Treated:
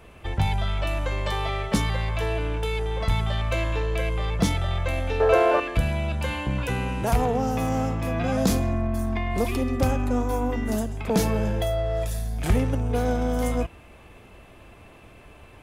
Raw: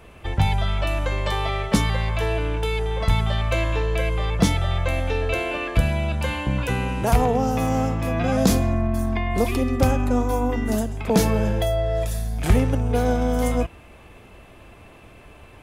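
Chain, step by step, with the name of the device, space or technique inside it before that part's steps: 5.2–5.6 band shelf 770 Hz +13.5 dB 2.4 oct; parallel distortion (in parallel at -8 dB: hard clip -22.5 dBFS, distortion -6 dB); on the sum: gain -5 dB

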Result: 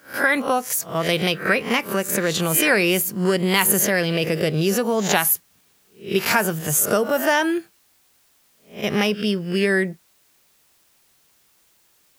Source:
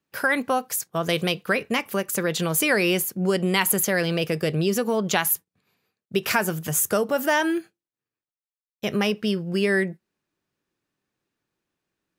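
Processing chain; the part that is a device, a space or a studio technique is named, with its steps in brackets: spectral swells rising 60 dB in 0.34 s; plain cassette with noise reduction switched in (mismatched tape noise reduction decoder only; wow and flutter 25 cents; white noise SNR 38 dB); gain +2 dB

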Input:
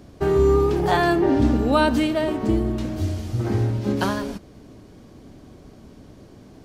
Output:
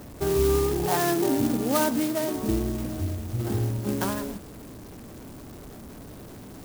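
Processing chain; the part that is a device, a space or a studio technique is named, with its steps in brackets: early CD player with a faulty converter (zero-crossing step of -34.5 dBFS; clock jitter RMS 0.087 ms); 0.86–2.35 HPF 110 Hz 24 dB/oct; gain -5.5 dB

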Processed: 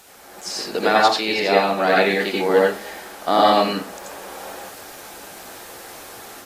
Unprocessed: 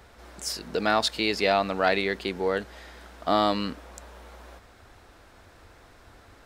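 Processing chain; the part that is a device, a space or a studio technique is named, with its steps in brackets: filmed off a television (BPF 270–7400 Hz; bell 810 Hz +4.5 dB 0.23 oct; reverb RT60 0.30 s, pre-delay 80 ms, DRR -4 dB; white noise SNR 24 dB; AGC gain up to 7.5 dB; gain -1 dB; AAC 48 kbps 32000 Hz)

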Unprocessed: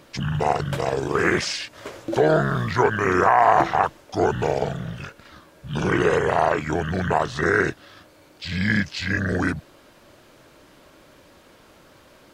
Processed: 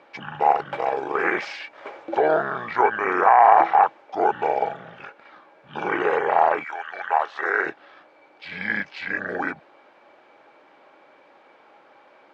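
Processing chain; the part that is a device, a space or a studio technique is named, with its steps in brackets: tin-can telephone (BPF 430–2200 Hz; small resonant body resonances 820/2300 Hz, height 13 dB, ringing for 65 ms); 6.63–7.65 HPF 1300 Hz -> 400 Hz 12 dB/oct

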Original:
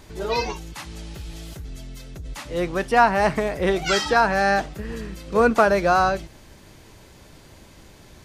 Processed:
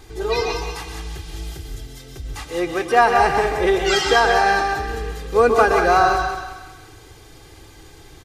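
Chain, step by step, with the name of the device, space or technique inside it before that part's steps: microphone above a desk (comb 2.5 ms, depth 73%; reverb RT60 0.45 s, pre-delay 0.12 s, DRR 5 dB); 2.44–3 HPF 110 Hz 6 dB/oct; thinning echo 0.184 s, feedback 43%, high-pass 490 Hz, level -7.5 dB

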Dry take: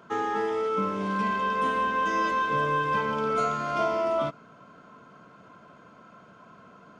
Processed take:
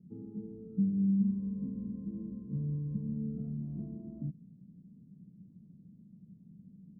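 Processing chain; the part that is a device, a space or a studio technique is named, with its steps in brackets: the neighbour's flat through the wall (LPF 220 Hz 24 dB/oct; bell 180 Hz +7.5 dB 0.5 oct)

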